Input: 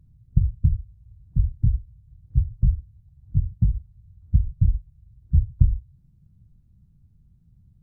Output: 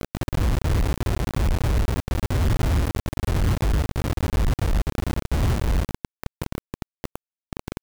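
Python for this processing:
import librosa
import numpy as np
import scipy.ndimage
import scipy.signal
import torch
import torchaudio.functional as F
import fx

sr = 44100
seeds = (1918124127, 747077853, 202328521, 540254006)

y = fx.over_compress(x, sr, threshold_db=-30.0, ratio=-1.0)
y = fx.quant_companded(y, sr, bits=2)
y = y * librosa.db_to_amplitude(6.5)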